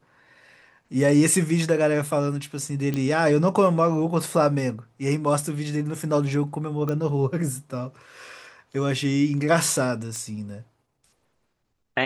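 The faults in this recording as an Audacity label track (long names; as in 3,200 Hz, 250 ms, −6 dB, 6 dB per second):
2.940000	2.940000	click −14 dBFS
6.890000	6.890000	click −16 dBFS
10.160000	10.160000	click −21 dBFS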